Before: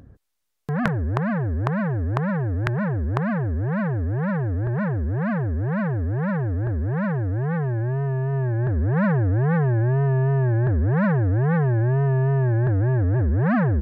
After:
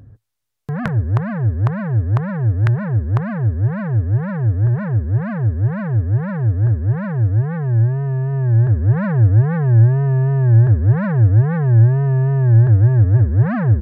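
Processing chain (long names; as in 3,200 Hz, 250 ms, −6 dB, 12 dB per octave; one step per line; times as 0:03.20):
parametric band 110 Hz +14 dB 0.45 octaves
level −1 dB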